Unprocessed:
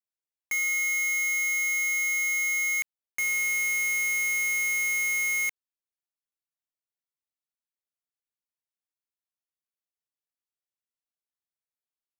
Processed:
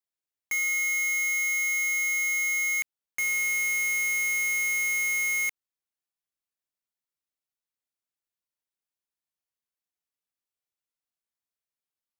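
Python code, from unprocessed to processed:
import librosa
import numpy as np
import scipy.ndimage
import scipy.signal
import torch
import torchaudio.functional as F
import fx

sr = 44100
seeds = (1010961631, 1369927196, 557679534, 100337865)

y = fx.highpass(x, sr, hz=260.0, slope=12, at=(1.32, 1.84))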